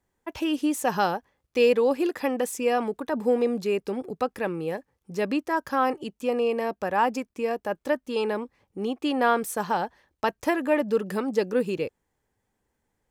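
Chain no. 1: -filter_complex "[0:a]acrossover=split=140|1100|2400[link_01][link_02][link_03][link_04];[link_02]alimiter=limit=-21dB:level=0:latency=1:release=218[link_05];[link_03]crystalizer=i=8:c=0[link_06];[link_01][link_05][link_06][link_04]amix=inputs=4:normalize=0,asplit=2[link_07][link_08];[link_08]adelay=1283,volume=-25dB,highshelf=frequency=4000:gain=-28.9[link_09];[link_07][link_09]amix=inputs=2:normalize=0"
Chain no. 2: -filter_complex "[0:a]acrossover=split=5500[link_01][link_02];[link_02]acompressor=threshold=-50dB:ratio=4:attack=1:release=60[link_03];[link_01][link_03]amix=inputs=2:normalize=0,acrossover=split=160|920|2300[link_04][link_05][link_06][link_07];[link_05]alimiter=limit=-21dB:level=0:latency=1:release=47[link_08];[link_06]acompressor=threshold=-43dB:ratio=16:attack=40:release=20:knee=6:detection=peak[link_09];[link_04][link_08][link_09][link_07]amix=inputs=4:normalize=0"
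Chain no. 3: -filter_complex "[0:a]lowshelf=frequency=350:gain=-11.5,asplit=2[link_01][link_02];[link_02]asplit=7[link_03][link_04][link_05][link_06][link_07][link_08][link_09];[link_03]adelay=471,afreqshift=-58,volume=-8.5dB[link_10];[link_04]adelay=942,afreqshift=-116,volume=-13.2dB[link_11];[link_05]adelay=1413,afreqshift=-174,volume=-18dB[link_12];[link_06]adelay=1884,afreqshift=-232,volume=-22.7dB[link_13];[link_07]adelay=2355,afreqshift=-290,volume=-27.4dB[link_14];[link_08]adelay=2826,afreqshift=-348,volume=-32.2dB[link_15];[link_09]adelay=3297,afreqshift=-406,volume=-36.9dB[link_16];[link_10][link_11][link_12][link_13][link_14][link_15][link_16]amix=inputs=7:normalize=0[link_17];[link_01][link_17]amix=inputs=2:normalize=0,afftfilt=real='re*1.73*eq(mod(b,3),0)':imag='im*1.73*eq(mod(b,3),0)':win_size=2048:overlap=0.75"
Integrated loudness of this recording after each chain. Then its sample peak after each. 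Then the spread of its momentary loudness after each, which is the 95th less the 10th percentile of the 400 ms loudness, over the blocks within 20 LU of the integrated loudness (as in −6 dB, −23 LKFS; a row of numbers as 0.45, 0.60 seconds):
−28.0, −29.5, −32.0 LKFS; −9.5, −15.0, −11.0 dBFS; 8, 7, 10 LU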